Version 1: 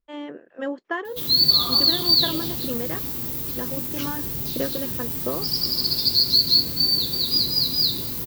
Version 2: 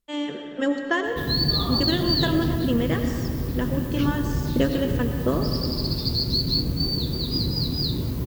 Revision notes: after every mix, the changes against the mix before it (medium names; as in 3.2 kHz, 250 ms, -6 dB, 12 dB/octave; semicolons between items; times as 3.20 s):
first voice: remove band-pass filter 800 Hz, Q 0.57; background: add tilt EQ -3.5 dB/octave; reverb: on, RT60 2.2 s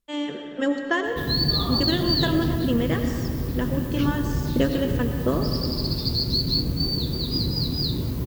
no change